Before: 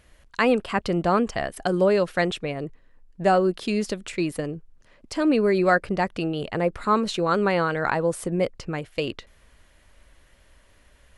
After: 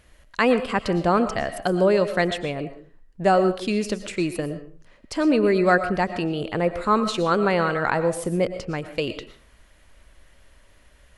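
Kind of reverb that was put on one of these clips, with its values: algorithmic reverb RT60 0.41 s, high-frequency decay 0.7×, pre-delay 75 ms, DRR 10.5 dB; trim +1 dB

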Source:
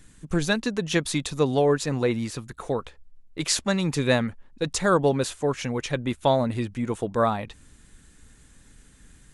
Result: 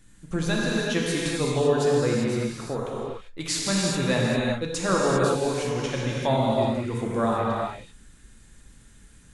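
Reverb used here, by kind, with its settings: gated-style reverb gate 420 ms flat, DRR -4.5 dB; trim -5.5 dB

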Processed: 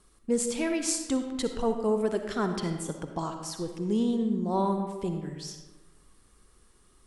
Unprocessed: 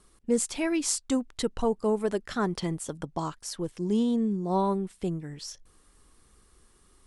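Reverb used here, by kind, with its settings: algorithmic reverb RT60 1.3 s, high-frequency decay 0.6×, pre-delay 20 ms, DRR 5.5 dB; trim -1.5 dB

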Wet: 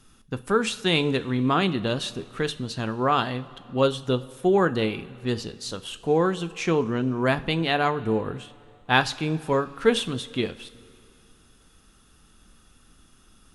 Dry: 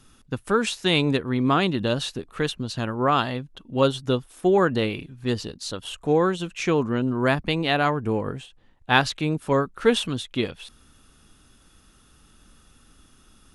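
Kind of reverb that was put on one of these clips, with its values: two-slope reverb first 0.34 s, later 2.6 s, from -15 dB, DRR 10.5 dB; trim -1.5 dB

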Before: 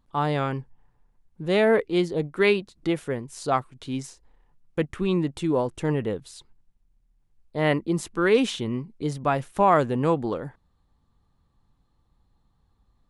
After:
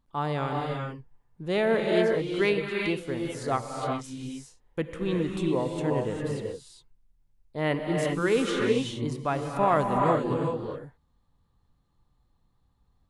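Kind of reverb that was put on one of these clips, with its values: gated-style reverb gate 430 ms rising, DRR 0.5 dB; trim -5 dB

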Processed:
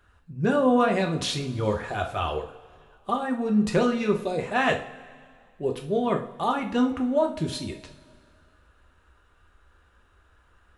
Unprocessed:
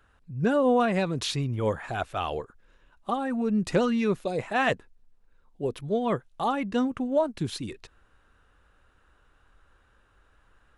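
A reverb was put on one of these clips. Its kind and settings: two-slope reverb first 0.36 s, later 2.1 s, from -19 dB, DRR 2 dB

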